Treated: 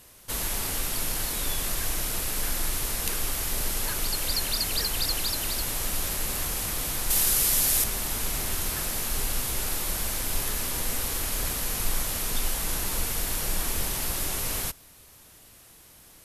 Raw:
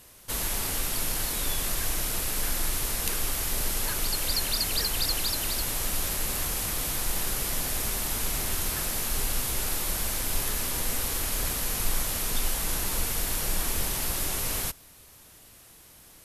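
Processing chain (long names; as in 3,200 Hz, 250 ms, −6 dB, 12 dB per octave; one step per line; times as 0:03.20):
0:07.10–0:07.84: high-shelf EQ 3,400 Hz +9.5 dB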